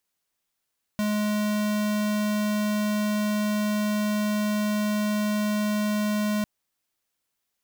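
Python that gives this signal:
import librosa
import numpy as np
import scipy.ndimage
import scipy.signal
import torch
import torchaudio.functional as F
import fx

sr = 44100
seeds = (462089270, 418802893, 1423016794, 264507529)

y = fx.tone(sr, length_s=5.45, wave='square', hz=210.0, level_db=-25.0)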